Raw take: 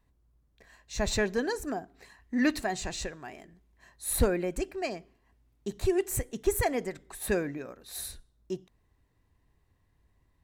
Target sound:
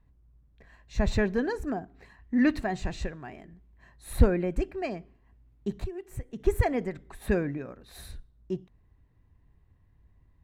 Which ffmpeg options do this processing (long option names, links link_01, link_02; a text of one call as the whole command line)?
ffmpeg -i in.wav -filter_complex "[0:a]asettb=1/sr,asplit=3[link_01][link_02][link_03];[link_01]atrim=end=5.734[link_04];[link_02]atrim=start=5.73:end=6.4,asetpts=PTS-STARTPTS,afade=type=in:duration=0.004:curve=qsin,afade=type=out:start_time=0.666:duration=0.004:curve=qsin,acompressor=threshold=-37dB:ratio=8[link_05];[link_03]atrim=start=6.396[link_06];[link_04][link_05]acrossfade=duration=0.004:curve1=hsin:curve2=qsin[link_07];[link_07][link_06]acrossfade=duration=0.004:curve1=qsin:curve2=hsin,bass=frequency=250:gain=8,treble=frequency=4000:gain=-13" out.wav